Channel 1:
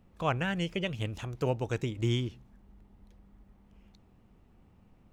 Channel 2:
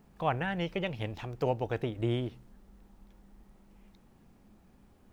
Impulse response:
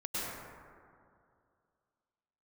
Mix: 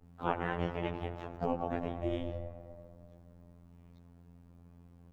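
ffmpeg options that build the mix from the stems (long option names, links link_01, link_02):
-filter_complex "[0:a]bandpass=frequency=590:width_type=q:width=0.75:csg=0,aeval=exprs='val(0)*sin(2*PI*250*n/s)':channel_layout=same,volume=1dB,asplit=2[link_01][link_02];[link_02]volume=-6.5dB[link_03];[1:a]aeval=exprs='val(0)+0.00501*(sin(2*PI*60*n/s)+sin(2*PI*2*60*n/s)/2+sin(2*PI*3*60*n/s)/3+sin(2*PI*4*60*n/s)/4+sin(2*PI*5*60*n/s)/5)':channel_layout=same,adelay=23,volume=-3.5dB[link_04];[2:a]atrim=start_sample=2205[link_05];[link_03][link_05]afir=irnorm=-1:irlink=0[link_06];[link_01][link_04][link_06]amix=inputs=3:normalize=0,afftfilt=real='hypot(re,im)*cos(PI*b)':imag='0':win_size=2048:overlap=0.75,adynamicequalizer=threshold=0.00158:dfrequency=2400:dqfactor=0.7:tfrequency=2400:tqfactor=0.7:attack=5:release=100:ratio=0.375:range=2.5:mode=cutabove:tftype=highshelf"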